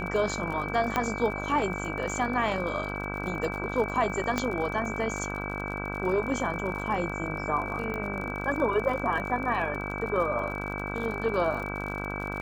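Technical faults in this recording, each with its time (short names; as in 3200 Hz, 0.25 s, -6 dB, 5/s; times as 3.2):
buzz 50 Hz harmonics 32 -35 dBFS
crackle 45/s -35 dBFS
tone 2300 Hz -36 dBFS
0.96 pop -12 dBFS
4.38 pop -13 dBFS
7.94 pop -22 dBFS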